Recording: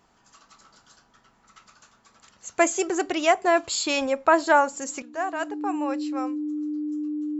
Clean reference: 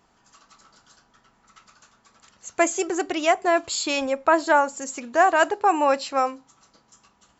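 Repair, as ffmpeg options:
-af "bandreject=f=300:w=30,asetnsamples=n=441:p=0,asendcmd='5.02 volume volume 11dB',volume=0dB"

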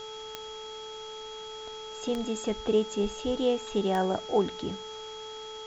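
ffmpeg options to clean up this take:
-af "adeclick=t=4,bandreject=f=435.6:t=h:w=4,bandreject=f=871.2:t=h:w=4,bandreject=f=1.3068k:t=h:w=4,bandreject=f=3.3k:w=30,afwtdn=0.004"

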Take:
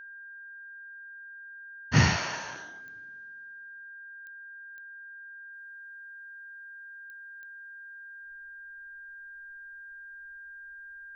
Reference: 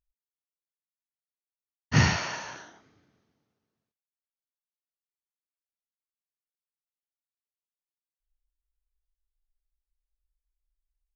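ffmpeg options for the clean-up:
-af "adeclick=t=4,bandreject=f=1.6k:w=30,asetnsamples=n=441:p=0,asendcmd='5.53 volume volume -8dB',volume=0dB"

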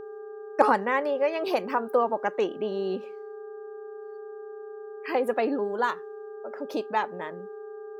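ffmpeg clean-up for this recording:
-af "bandreject=f=400.7:t=h:w=4,bandreject=f=801.4:t=h:w=4,bandreject=f=1.2021k:t=h:w=4,bandreject=f=1.6028k:t=h:w=4,bandreject=f=430:w=30"

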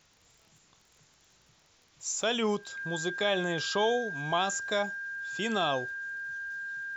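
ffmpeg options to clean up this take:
-af "adeclick=t=4,bandreject=f=1.6k:w=30,agate=range=-21dB:threshold=-57dB"

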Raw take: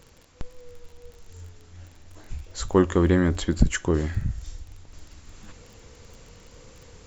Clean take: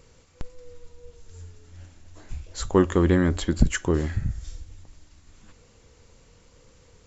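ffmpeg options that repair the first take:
-af "adeclick=t=4,agate=range=-21dB:threshold=-42dB,asetnsamples=n=441:p=0,asendcmd='4.93 volume volume -6.5dB',volume=0dB"

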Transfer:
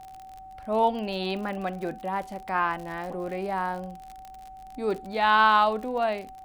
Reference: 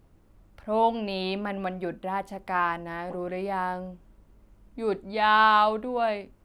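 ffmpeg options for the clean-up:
-af "adeclick=t=4,bandreject=f=760:w=30"

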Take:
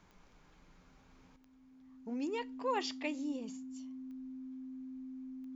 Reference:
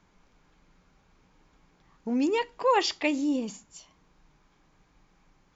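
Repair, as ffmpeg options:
-af "adeclick=t=4,bandreject=f=260:w=30,asetnsamples=n=441:p=0,asendcmd='1.36 volume volume 11.5dB',volume=0dB"

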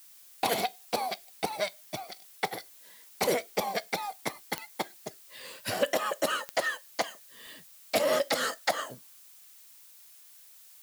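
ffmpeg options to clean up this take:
-af "adeclick=t=4,afftdn=nr=22:nf=-54"

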